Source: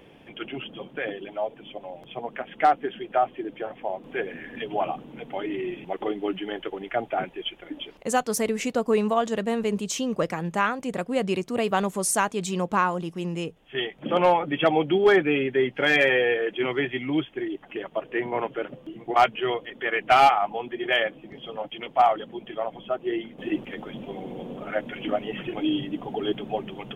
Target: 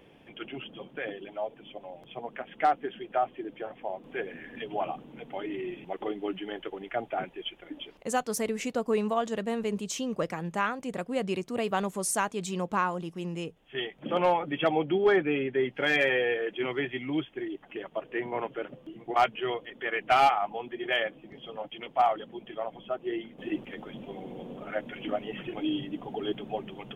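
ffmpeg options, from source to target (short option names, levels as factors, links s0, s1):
-filter_complex "[0:a]asettb=1/sr,asplit=3[s0][s1][s2];[s0]atrim=end=14.754[s3];[s1]atrim=start=14.75:end=15.65,asetpts=PTS-STARTPTS,afade=t=in:d=0.004:c=qsin,afade=t=out:st=0.896:d=0.004:c=qsin,aemphasis=mode=reproduction:type=50fm[s4];[s2]atrim=start=15.646[s5];[s3][s4]acrossfade=d=0.004:c1=hsin:c2=qsin[s6];[s6][s5]acrossfade=d=0.004:c1=qsin:c2=hsin,volume=0.562"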